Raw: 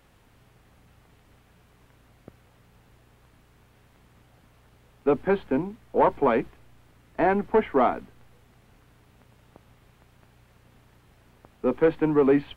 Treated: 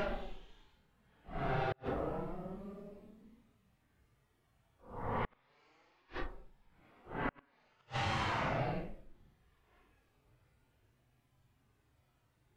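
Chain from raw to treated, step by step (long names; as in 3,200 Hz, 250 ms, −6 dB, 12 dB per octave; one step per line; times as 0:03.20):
harmonic generator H 3 −7 dB, 8 −16 dB, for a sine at −8.5 dBFS
extreme stretch with random phases 8.2×, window 0.05 s, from 0:05.34
gate with flip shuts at −16 dBFS, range −40 dB
level −7.5 dB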